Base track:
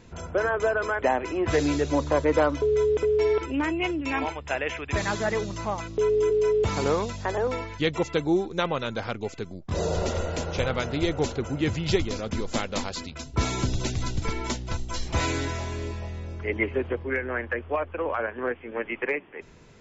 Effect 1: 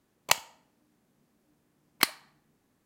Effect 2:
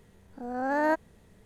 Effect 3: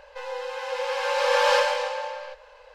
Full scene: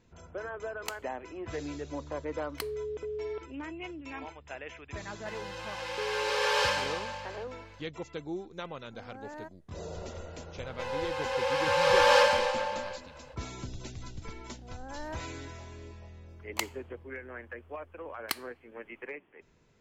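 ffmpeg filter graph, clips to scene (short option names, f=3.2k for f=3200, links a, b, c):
-filter_complex "[1:a]asplit=2[a][b];[3:a]asplit=2[c][d];[2:a]asplit=2[e][f];[0:a]volume=-14dB[g];[c]highpass=f=1.4k:p=1[h];[e]alimiter=limit=-18.5dB:level=0:latency=1:release=118[i];[a]atrim=end=2.85,asetpts=PTS-STARTPTS,volume=-15dB,afade=t=in:d=0.004:c=hsin,afade=t=out:st=2.846:d=0.004:c=hsin,adelay=570[j];[h]atrim=end=2.74,asetpts=PTS-STARTPTS,volume=-2.5dB,afade=t=in:d=0.004:c=hsin,afade=t=out:st=2.736:d=0.004:c=hsin,adelay=5100[k];[i]atrim=end=1.45,asetpts=PTS-STARTPTS,volume=-17.5dB,afade=t=in:d=0.004:c=hsin,afade=t=out:st=1.446:d=0.004:c=hsin,adelay=8530[l];[d]atrim=end=2.74,asetpts=PTS-STARTPTS,volume=-1dB,afade=t=in:d=0.05,afade=t=out:st=2.69:d=0.05,adelay=10630[m];[f]atrim=end=1.45,asetpts=PTS-STARTPTS,volume=-15.5dB,afade=t=in:d=0.004:c=hsin,afade=t=out:st=1.446:d=0.004:c=hsin,adelay=14210[n];[b]atrim=end=2.85,asetpts=PTS-STARTPTS,volume=-9dB,afade=t=in:d=0.004:c=hsin,afade=t=out:st=2.846:d=0.004:c=hsin,adelay=16280[o];[g][j][k][l][m][n][o]amix=inputs=7:normalize=0"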